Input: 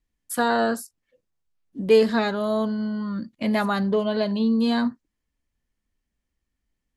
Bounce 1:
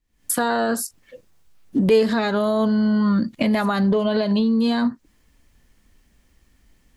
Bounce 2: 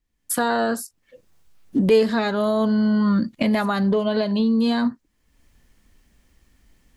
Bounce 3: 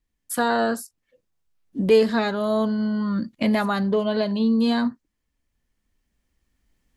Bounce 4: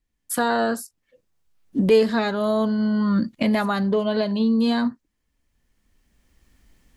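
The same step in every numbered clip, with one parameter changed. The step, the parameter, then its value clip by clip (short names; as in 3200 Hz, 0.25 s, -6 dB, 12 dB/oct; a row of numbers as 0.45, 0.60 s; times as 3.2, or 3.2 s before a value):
recorder AGC, rising by: 83, 32, 5, 12 dB/s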